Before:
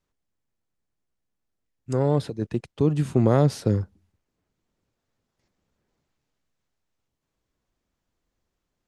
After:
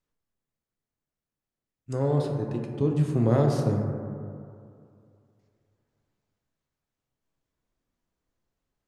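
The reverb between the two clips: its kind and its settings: plate-style reverb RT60 2.4 s, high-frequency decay 0.25×, DRR 1 dB; trim -6 dB

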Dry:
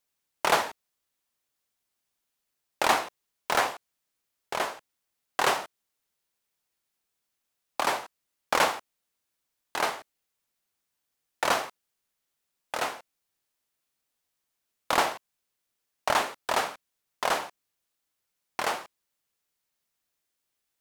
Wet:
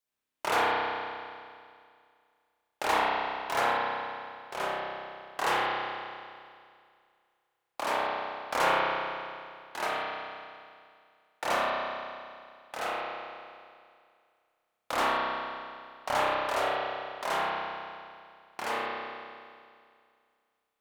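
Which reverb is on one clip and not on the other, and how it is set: spring tank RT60 2.2 s, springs 31 ms, chirp 30 ms, DRR -7.5 dB; trim -8.5 dB

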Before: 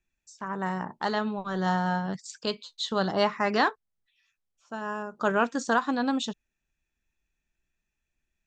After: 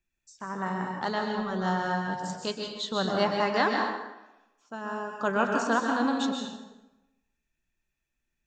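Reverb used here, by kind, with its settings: plate-style reverb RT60 1 s, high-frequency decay 0.75×, pre-delay 115 ms, DRR 1 dB; trim -2.5 dB

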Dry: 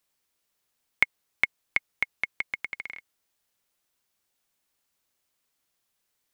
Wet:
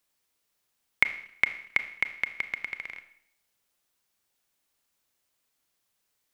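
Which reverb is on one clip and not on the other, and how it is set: Schroeder reverb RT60 0.68 s, combs from 26 ms, DRR 10 dB

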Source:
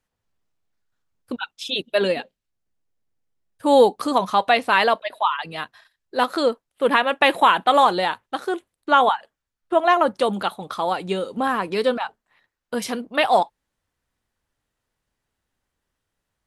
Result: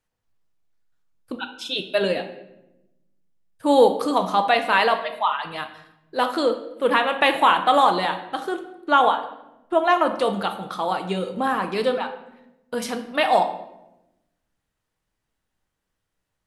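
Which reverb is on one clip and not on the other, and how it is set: simulated room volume 320 m³, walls mixed, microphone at 0.55 m; trim -2 dB

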